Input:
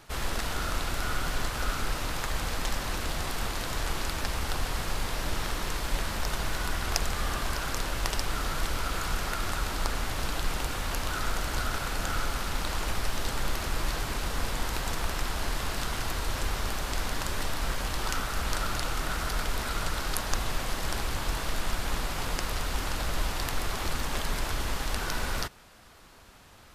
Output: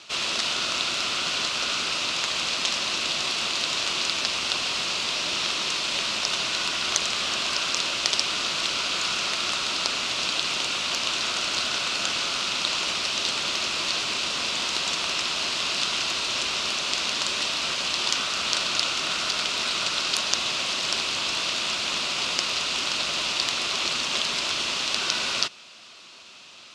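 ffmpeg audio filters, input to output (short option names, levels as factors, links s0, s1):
-af "highpass=290,equalizer=f=290:t=q:w=4:g=-4,equalizer=f=470:t=q:w=4:g=-7,equalizer=f=820:t=q:w=4:g=-8,equalizer=f=1700:t=q:w=4:g=-6,equalizer=f=2600:t=q:w=4:g=9,lowpass=f=6000:w=0.5412,lowpass=f=6000:w=1.3066,afftfilt=real='re*lt(hypot(re,im),0.0891)':imag='im*lt(hypot(re,im),0.0891)':win_size=1024:overlap=0.75,aexciter=amount=3.5:drive=2.2:freq=3200,volume=1.88"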